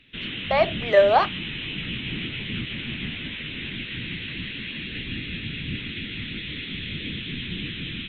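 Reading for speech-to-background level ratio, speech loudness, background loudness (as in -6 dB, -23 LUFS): 10.5 dB, -20.5 LUFS, -31.0 LUFS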